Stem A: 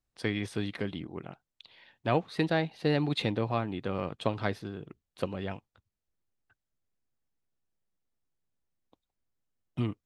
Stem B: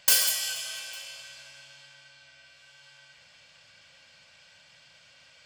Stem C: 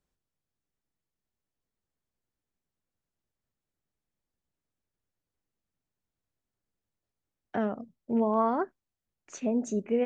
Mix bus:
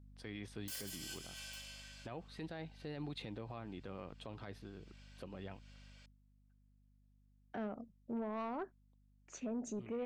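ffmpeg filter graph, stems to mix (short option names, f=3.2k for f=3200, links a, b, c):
-filter_complex "[0:a]aeval=exprs='val(0)+0.00562*(sin(2*PI*50*n/s)+sin(2*PI*2*50*n/s)/2+sin(2*PI*3*50*n/s)/3+sin(2*PI*4*50*n/s)/4+sin(2*PI*5*50*n/s)/5)':c=same,volume=-12dB,afade=t=out:st=5.9:d=0.27:silence=0.266073,asplit=2[a][b];[1:a]adelay=600,volume=-8dB[c];[2:a]asoftclip=type=tanh:threshold=-22.5dB,volume=-7.5dB[d];[b]apad=whole_len=267173[e];[c][e]sidechaincompress=threshold=-56dB:ratio=6:attack=9.7:release=180[f];[a][f][d]amix=inputs=3:normalize=0,alimiter=level_in=11dB:limit=-24dB:level=0:latency=1:release=46,volume=-11dB"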